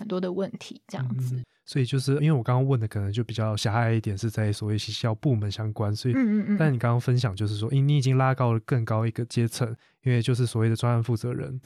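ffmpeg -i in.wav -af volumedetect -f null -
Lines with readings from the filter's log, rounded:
mean_volume: -24.9 dB
max_volume: -9.8 dB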